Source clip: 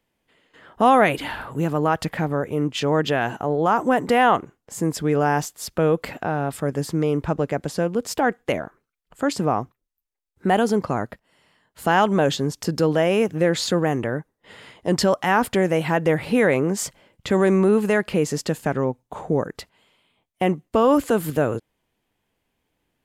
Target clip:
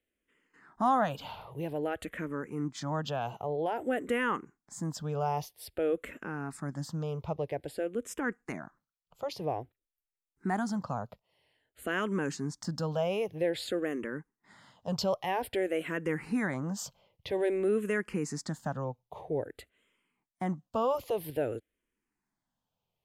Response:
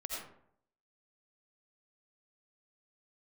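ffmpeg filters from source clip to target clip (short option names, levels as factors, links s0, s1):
-filter_complex "[0:a]asplit=2[s0][s1];[s1]afreqshift=-0.51[s2];[s0][s2]amix=inputs=2:normalize=1,volume=0.355"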